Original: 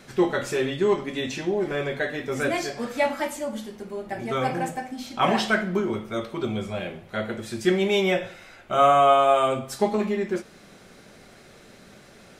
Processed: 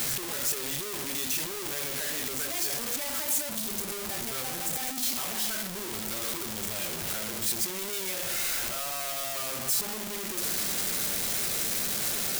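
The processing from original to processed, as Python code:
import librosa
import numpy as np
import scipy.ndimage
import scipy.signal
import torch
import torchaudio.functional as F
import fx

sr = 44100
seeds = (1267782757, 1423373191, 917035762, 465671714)

y = np.sign(x) * np.sqrt(np.mean(np.square(x)))
y = librosa.effects.preemphasis(y, coef=0.8, zi=[0.0])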